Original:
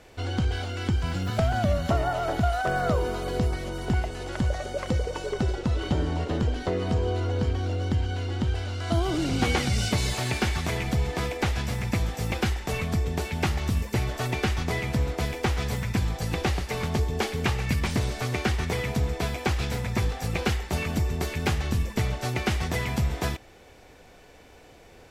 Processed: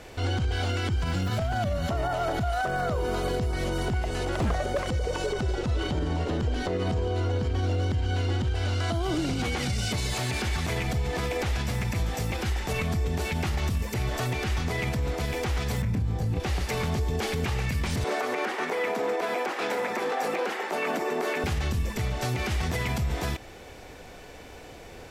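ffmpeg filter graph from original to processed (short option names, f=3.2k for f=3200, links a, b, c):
-filter_complex "[0:a]asettb=1/sr,asplit=3[a][b][c];[a]atrim=end=4.254[d];[b]atrim=start=4.25:end=4.83,asetpts=PTS-STARTPTS,afade=t=in:d=0.004:c=qsin,afade=t=out:st=0.576:d=0.004:c=qsin,equalizer=f=5.5k:t=o:w=2.5:g=-5,aeval=exprs='0.0631*(abs(mod(val(0)/0.0631+3,4)-2)-1)':c=same[e];[c]atrim=start=4.826[f];[d][e]acrossfade=d=0.004:c1=hsin:c2=qsin[g];[g][f]acrossfade=d=0.004:c1=qsin:c2=hsin,asettb=1/sr,asplit=3[h][i][j];[h]atrim=end=15.824[k];[i]atrim=start=15.82:end=16.4,asetpts=PTS-STARTPTS,afade=t=in:d=0.004:c=qsin,afade=t=out:st=0.576:d=0.004:c=qsin,tiltshelf=f=650:g=7.5,asplit=2[l][m];[m]adelay=28,volume=-4dB[n];[l][n]amix=inputs=2:normalize=0,atrim=end_sample=25578[o];[j]atrim=start=16.396[p];[k][o]acrossfade=d=0.004:c1=hsin:c2=qsin[q];[q][p]acrossfade=d=0.004:c1=qsin:c2=hsin,asettb=1/sr,asplit=3[r][s][t];[r]atrim=end=18.044[u];[s]atrim=start=18.04:end=21.44,asetpts=PTS-STARTPTS,afade=t=in:d=0.004:c=qsin,afade=t=out:st=3.396:d=0.004:c=qsin,highpass=f=190:w=0.5412,highpass=f=190:w=1.3066,acrossover=split=300 2100:gain=0.0631 1 0.251[v][w][x];[v][w][x]amix=inputs=3:normalize=0,acontrast=85[y];[t]atrim=start=21.436[z];[u][y]acrossfade=d=0.004:c1=hsin:c2=qsin[aa];[aa][z]acrossfade=d=0.004:c1=qsin:c2=hsin,acompressor=threshold=-27dB:ratio=6,alimiter=level_in=2dB:limit=-24dB:level=0:latency=1:release=48,volume=-2dB,volume=6.5dB"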